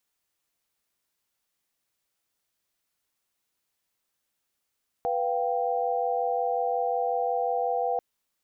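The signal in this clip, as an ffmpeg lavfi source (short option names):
-f lavfi -i "aevalsrc='0.0376*(sin(2*PI*493.88*t)+sin(2*PI*698.46*t)+sin(2*PI*783.99*t))':d=2.94:s=44100"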